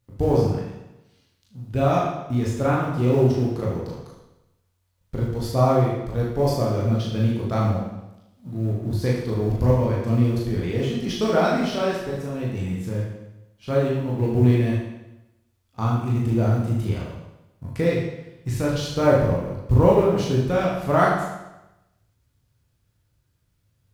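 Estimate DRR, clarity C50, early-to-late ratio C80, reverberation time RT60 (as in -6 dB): -4.5 dB, 1.5 dB, 4.5 dB, 0.95 s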